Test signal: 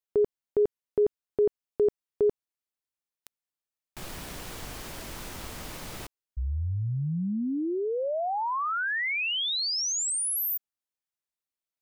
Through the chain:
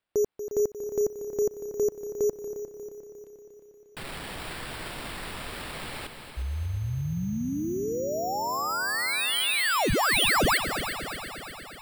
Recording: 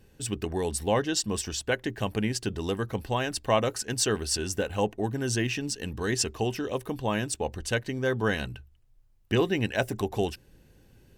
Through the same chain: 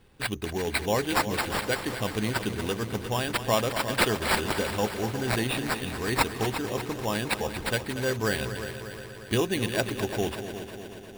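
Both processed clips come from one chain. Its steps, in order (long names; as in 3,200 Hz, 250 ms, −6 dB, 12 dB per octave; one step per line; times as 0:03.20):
high-shelf EQ 3,900 Hz +8 dB
decimation without filtering 7×
on a send: echo machine with several playback heads 118 ms, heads second and third, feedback 63%, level −11 dB
on the sum: level −1.5 dB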